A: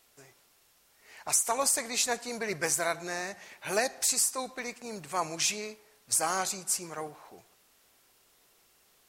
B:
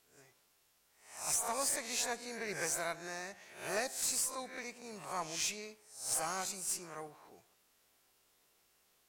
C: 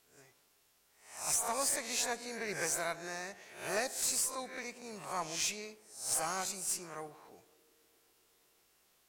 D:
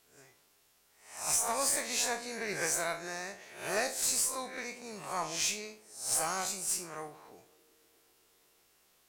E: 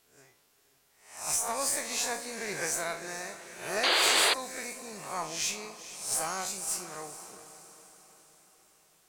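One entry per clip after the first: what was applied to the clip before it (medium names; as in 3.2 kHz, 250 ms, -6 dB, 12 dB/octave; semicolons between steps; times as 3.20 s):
reverse spectral sustain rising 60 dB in 0.50 s; valve stage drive 16 dB, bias 0.35; trim -8 dB
band-passed feedback delay 126 ms, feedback 84%, band-pass 370 Hz, level -21 dB; trim +1.5 dB
spectral sustain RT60 0.33 s; trim +1.5 dB
echo that smears into a reverb 464 ms, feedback 52%, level -13 dB; painted sound noise, 3.83–4.34 s, 320–4900 Hz -25 dBFS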